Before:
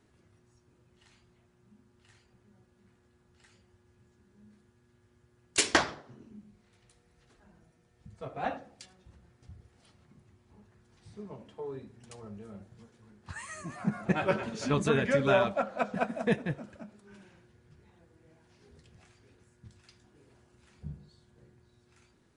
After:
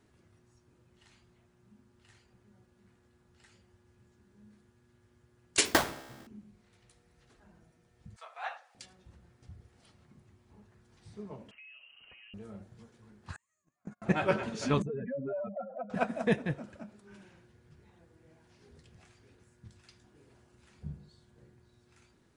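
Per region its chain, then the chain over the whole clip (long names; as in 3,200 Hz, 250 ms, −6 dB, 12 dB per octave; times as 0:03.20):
0:05.65–0:06.27: each half-wave held at its own peak + tuned comb filter 66 Hz, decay 1.8 s, mix 50%
0:08.16–0:08.75: high-pass filter 880 Hz 24 dB per octave + one half of a high-frequency compander encoder only
0:11.51–0:12.34: voice inversion scrambler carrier 3,000 Hz + downward compressor 5 to 1, threshold −49 dBFS + high-frequency loss of the air 180 metres
0:13.36–0:14.02: noise gate −34 dBFS, range −42 dB + parametric band 6,900 Hz +13 dB 0.29 octaves + downward compressor 8 to 1, threshold −39 dBFS
0:14.82–0:15.90: expanding power law on the bin magnitudes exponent 2.8 + downward compressor 3 to 1, threshold −37 dBFS
whole clip: no processing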